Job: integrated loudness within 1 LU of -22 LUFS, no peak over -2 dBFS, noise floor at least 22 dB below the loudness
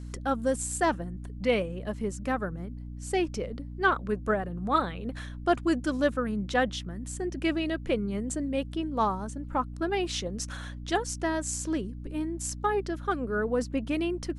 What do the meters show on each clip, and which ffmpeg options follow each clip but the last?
hum 60 Hz; highest harmonic 300 Hz; hum level -37 dBFS; loudness -30.0 LUFS; peak level -11.0 dBFS; loudness target -22.0 LUFS
-> -af "bandreject=f=60:t=h:w=6,bandreject=f=120:t=h:w=6,bandreject=f=180:t=h:w=6,bandreject=f=240:t=h:w=6,bandreject=f=300:t=h:w=6"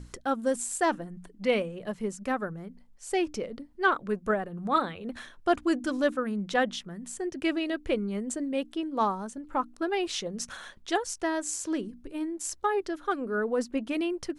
hum not found; loudness -30.5 LUFS; peak level -11.0 dBFS; loudness target -22.0 LUFS
-> -af "volume=2.66"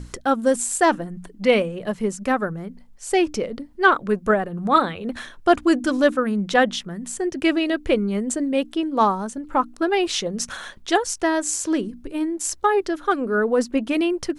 loudness -22.0 LUFS; peak level -2.5 dBFS; noise floor -46 dBFS

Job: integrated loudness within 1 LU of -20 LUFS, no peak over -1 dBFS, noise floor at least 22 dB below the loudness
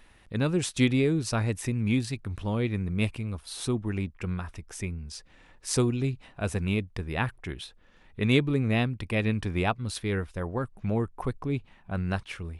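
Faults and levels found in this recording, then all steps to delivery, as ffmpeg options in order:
loudness -29.5 LUFS; peak level -9.0 dBFS; loudness target -20.0 LUFS
-> -af "volume=2.99,alimiter=limit=0.891:level=0:latency=1"

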